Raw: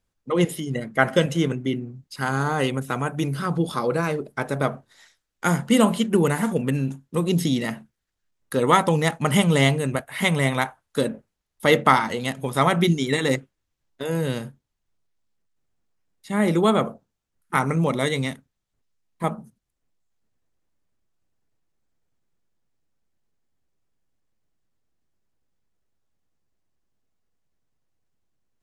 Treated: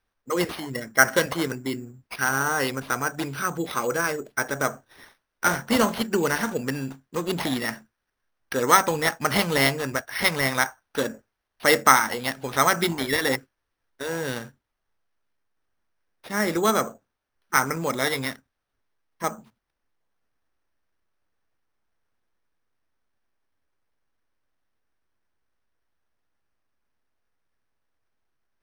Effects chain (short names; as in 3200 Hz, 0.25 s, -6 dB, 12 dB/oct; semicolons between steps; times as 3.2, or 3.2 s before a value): fifteen-band EQ 160 Hz -9 dB, 1600 Hz +9 dB, 6300 Hz +12 dB; careless resampling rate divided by 6×, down none, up hold; gain -3 dB